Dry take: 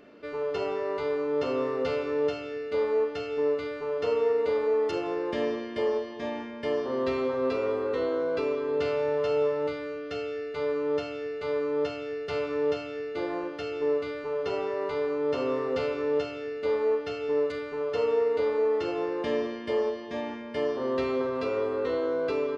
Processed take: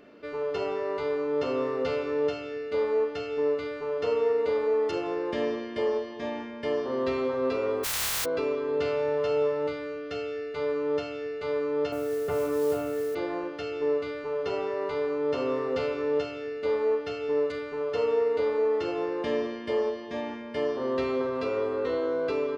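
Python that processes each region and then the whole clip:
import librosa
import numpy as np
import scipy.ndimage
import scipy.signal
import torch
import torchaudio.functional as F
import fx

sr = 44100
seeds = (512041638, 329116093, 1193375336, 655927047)

y = fx.spec_flatten(x, sr, power=0.11, at=(7.83, 8.24), fade=0.02)
y = fx.peak_eq(y, sr, hz=300.0, db=-14.5, octaves=1.8, at=(7.83, 8.24), fade=0.02)
y = fx.chain(y, sr, fx.lowpass(hz=1300.0, slope=12),
    fx.mod_noise(seeds[0], snr_db=22),
    fx.env_flatten(amount_pct=50), at=(11.92, 13.15))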